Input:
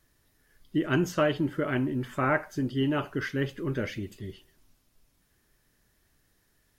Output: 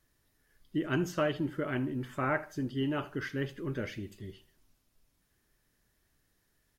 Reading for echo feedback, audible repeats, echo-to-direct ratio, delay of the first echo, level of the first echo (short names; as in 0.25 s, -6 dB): 31%, 2, -19.5 dB, 78 ms, -20.0 dB